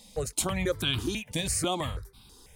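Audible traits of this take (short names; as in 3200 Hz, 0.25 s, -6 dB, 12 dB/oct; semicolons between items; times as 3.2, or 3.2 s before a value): notches that jump at a steady rate 6.1 Hz 370–1900 Hz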